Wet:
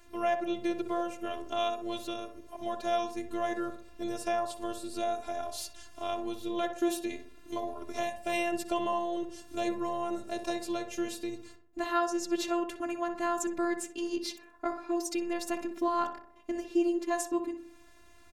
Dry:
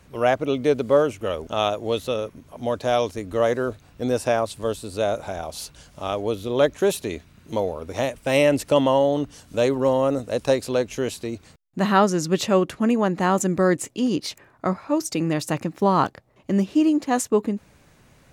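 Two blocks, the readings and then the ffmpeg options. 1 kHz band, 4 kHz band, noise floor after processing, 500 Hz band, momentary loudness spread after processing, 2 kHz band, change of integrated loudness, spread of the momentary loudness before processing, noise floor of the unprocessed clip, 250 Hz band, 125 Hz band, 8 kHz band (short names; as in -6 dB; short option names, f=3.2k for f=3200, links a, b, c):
-8.0 dB, -9.0 dB, -56 dBFS, -12.5 dB, 9 LU, -9.5 dB, -11.0 dB, 11 LU, -55 dBFS, -10.0 dB, -26.0 dB, -8.0 dB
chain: -filter_complex "[0:a]acompressor=threshold=-34dB:ratio=1.5,afftfilt=real='hypot(re,im)*cos(PI*b)':imag='0':win_size=512:overlap=0.75,asplit=2[a][b];[b]adelay=62,lowpass=f=1.5k:p=1,volume=-7dB,asplit=2[c][d];[d]adelay=62,lowpass=f=1.5k:p=1,volume=0.54,asplit=2[e][f];[f]adelay=62,lowpass=f=1.5k:p=1,volume=0.54,asplit=2[g][h];[h]adelay=62,lowpass=f=1.5k:p=1,volume=0.54,asplit=2[i][j];[j]adelay=62,lowpass=f=1.5k:p=1,volume=0.54,asplit=2[k][l];[l]adelay=62,lowpass=f=1.5k:p=1,volume=0.54,asplit=2[m][n];[n]adelay=62,lowpass=f=1.5k:p=1,volume=0.54[o];[a][c][e][g][i][k][m][o]amix=inputs=8:normalize=0"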